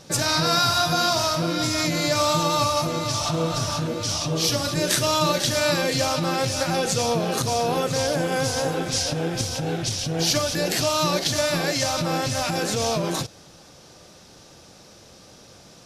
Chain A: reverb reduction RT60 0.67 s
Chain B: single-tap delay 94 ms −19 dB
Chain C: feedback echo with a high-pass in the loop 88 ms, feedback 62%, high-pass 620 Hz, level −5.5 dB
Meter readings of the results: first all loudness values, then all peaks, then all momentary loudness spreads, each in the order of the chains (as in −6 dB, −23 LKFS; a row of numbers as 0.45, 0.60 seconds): −24.0, −22.5, −21.5 LKFS; −5.0, −5.0, −5.0 dBFS; 5, 5, 6 LU